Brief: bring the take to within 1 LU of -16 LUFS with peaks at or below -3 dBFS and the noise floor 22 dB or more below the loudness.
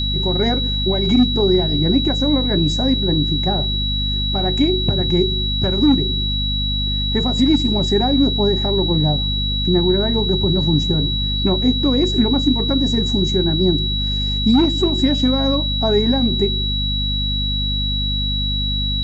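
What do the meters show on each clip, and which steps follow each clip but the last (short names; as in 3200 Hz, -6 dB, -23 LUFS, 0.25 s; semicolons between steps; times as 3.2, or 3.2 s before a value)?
hum 50 Hz; harmonics up to 250 Hz; hum level -20 dBFS; steady tone 3900 Hz; tone level -21 dBFS; loudness -17.5 LUFS; peak -4.0 dBFS; loudness target -16.0 LUFS
-> notches 50/100/150/200/250 Hz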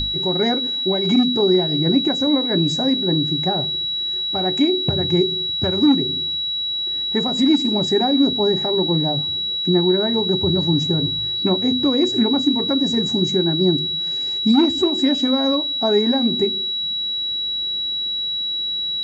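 hum none; steady tone 3900 Hz; tone level -21 dBFS
-> notch 3900 Hz, Q 30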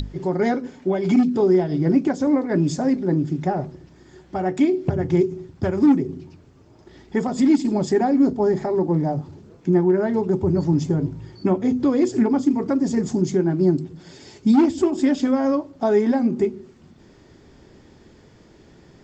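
steady tone none; loudness -20.5 LUFS; peak -4.5 dBFS; loudness target -16.0 LUFS
-> gain +4.5 dB; limiter -3 dBFS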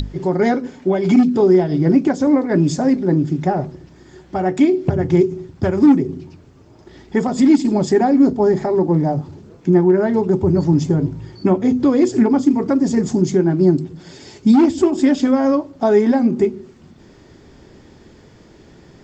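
loudness -16.0 LUFS; peak -3.0 dBFS; noise floor -46 dBFS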